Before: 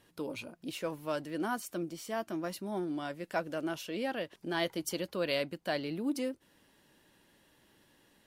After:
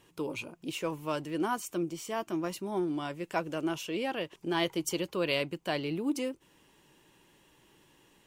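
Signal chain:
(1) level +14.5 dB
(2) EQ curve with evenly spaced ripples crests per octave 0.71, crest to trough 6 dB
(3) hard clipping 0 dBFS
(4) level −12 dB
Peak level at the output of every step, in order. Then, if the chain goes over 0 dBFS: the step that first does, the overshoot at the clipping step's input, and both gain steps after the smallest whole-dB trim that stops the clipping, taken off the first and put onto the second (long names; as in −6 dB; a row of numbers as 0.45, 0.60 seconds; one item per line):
−3.0, −3.0, −3.0, −15.0 dBFS
no step passes full scale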